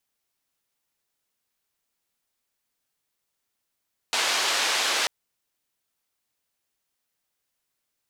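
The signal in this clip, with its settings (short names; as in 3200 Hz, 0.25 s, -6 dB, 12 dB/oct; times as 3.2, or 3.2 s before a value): noise band 520–5000 Hz, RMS -24.5 dBFS 0.94 s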